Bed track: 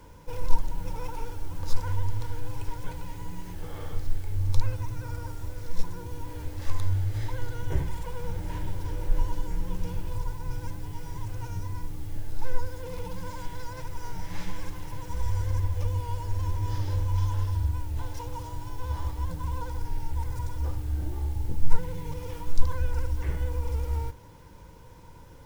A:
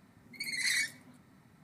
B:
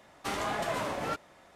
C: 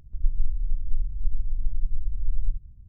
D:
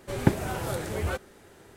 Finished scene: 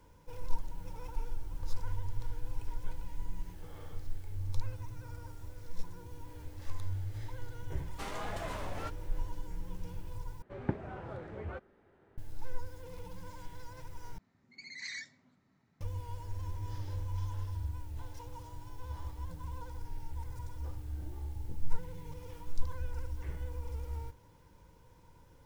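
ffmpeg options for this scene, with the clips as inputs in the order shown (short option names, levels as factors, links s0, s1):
-filter_complex "[0:a]volume=0.299[s0];[4:a]lowpass=1800[s1];[1:a]aresample=16000,aresample=44100[s2];[s0]asplit=3[s3][s4][s5];[s3]atrim=end=10.424[s6];[s1]atrim=end=1.76,asetpts=PTS-STARTPTS,volume=0.266[s7];[s4]atrim=start=12.176:end=14.184[s8];[s2]atrim=end=1.63,asetpts=PTS-STARTPTS,volume=0.282[s9];[s5]atrim=start=15.806[s10];[3:a]atrim=end=2.88,asetpts=PTS-STARTPTS,volume=0.211,afade=t=in:d=0.004:c=hsin,afade=t=out:st=2.876:d=0.004:c=hsin,adelay=920[s11];[2:a]atrim=end=1.55,asetpts=PTS-STARTPTS,volume=0.376,afade=t=in:d=0.004:c=hsin,afade=t=out:st=1.546:d=0.004:c=hsin,adelay=7740[s12];[s6][s7]acrossfade=d=0.004:c1=hsin:c2=hsin[s13];[s13][s8]acrossfade=d=0.004:c1=hsin:c2=hsin[s14];[s14][s9]acrossfade=d=0.004:c1=hsin:c2=hsin[s15];[s15][s10]acrossfade=d=0.004:c1=hsin:c2=hsin[s16];[s16][s11][s12]amix=inputs=3:normalize=0"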